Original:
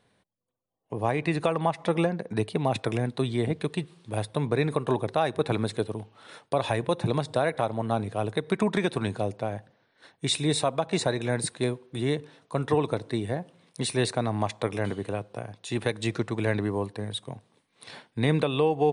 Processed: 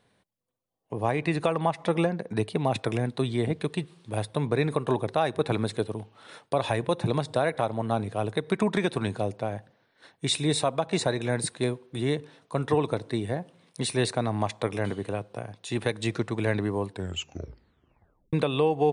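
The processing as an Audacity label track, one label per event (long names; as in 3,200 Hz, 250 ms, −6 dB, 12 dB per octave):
16.880000	16.880000	tape stop 1.45 s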